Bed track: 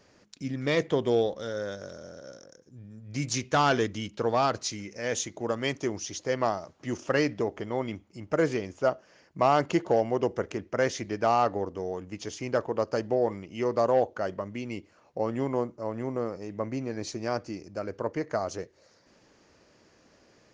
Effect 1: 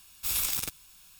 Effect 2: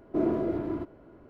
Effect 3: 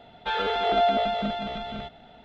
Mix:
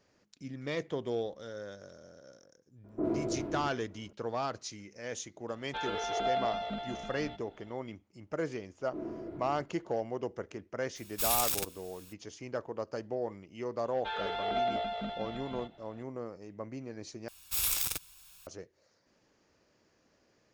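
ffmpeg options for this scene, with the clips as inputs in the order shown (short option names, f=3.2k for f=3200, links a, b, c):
-filter_complex "[2:a]asplit=2[a][b];[3:a]asplit=2[c][d];[1:a]asplit=2[e][f];[0:a]volume=-9.5dB[g];[a]acrossover=split=1900[h][i];[i]adelay=50[j];[h][j]amix=inputs=2:normalize=0[k];[f]equalizer=f=220:t=o:w=0.33:g=-14[l];[g]asplit=2[m][n];[m]atrim=end=17.284[o];[l]atrim=end=1.19,asetpts=PTS-STARTPTS,volume=-1.5dB[p];[n]atrim=start=18.466[q];[k]atrim=end=1.29,asetpts=PTS-STARTPTS,volume=-5.5dB,afade=t=in:d=0.004:c=hsin,afade=t=out:st=1.286:d=0.004:c=hsin,adelay=2840[r];[c]atrim=end=2.24,asetpts=PTS-STARTPTS,volume=-9.5dB,afade=t=in:d=0.004:c=hsin,afade=t=out:st=2.236:d=0.004:c=hsin,adelay=5480[s];[b]atrim=end=1.29,asetpts=PTS-STARTPTS,volume=-13.5dB,afade=t=in:d=0.004:c=hsin,afade=t=out:st=1.286:d=0.004:c=hsin,adelay=8790[t];[e]atrim=end=1.19,asetpts=PTS-STARTPTS,volume=-1dB,afade=t=in:d=0.02,afade=t=out:st=1.17:d=0.02,adelay=10950[u];[d]atrim=end=2.24,asetpts=PTS-STARTPTS,volume=-9.5dB,afade=t=in:d=0.004:c=hsin,afade=t=out:st=2.236:d=0.004:c=hsin,adelay=13790[v];[o][p]acrossfade=d=0.004:c1=hsin:c2=hsin[w];[w][q]acrossfade=d=0.004:c1=hsin:c2=hsin[x];[x][r][s][t][u][v]amix=inputs=6:normalize=0"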